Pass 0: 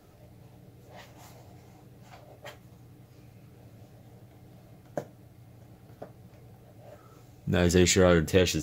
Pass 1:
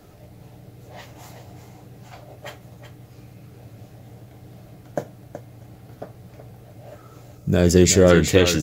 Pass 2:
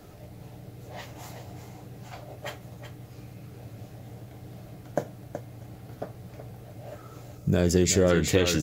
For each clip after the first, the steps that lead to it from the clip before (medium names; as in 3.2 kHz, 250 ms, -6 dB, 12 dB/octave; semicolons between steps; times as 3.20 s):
delay 374 ms -10.5 dB; time-frequency box 7.38–8.10 s, 710–4500 Hz -6 dB; trim +7.5 dB
compression 2.5:1, threshold -21 dBFS, peak gain reduction 9 dB